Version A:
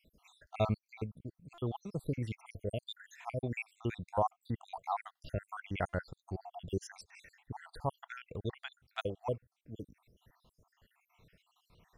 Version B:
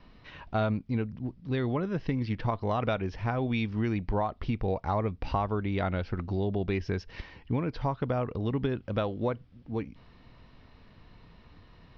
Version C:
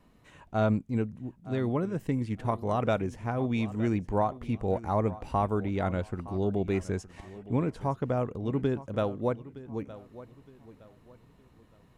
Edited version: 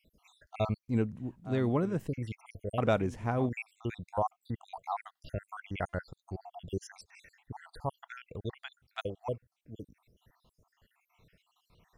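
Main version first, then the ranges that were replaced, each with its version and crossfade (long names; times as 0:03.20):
A
0:00.88–0:02.08: punch in from C
0:02.78–0:03.49: punch in from C
not used: B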